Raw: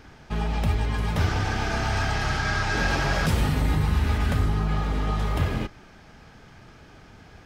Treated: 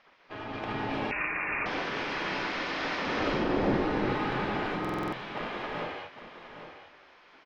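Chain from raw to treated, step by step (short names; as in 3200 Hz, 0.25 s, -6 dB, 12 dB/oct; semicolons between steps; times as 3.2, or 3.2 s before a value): 4.7–5.35 elliptic high-pass 190 Hz; spectral gate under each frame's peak -15 dB weak; 3.02–3.74 tilt shelf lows +9.5 dB, about 850 Hz; AM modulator 250 Hz, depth 30%; air absorption 270 m; echo 0.811 s -11 dB; non-linear reverb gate 0.44 s rising, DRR -4 dB; 1.11–1.66 inverted band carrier 2700 Hz; stuck buffer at 4.8, samples 2048, times 6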